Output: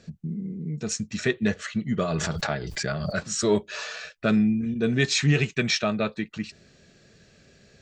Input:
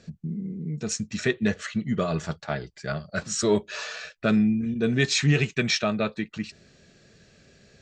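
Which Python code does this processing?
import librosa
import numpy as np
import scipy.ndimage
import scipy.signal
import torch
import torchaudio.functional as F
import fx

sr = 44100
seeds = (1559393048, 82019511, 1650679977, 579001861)

y = fx.pre_swell(x, sr, db_per_s=26.0, at=(2.18, 3.26))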